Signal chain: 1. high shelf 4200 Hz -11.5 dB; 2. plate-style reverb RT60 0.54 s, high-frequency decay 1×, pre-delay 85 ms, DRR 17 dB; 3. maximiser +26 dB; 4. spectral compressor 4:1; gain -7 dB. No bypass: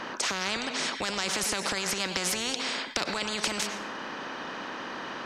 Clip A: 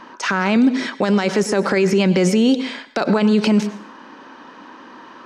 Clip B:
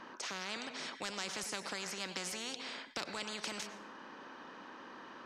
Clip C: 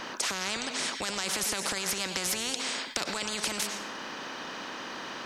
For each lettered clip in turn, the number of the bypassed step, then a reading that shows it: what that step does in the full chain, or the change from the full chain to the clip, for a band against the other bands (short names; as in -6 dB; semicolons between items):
4, 250 Hz band +15.0 dB; 3, crest factor change -1.5 dB; 1, 8 kHz band +3.5 dB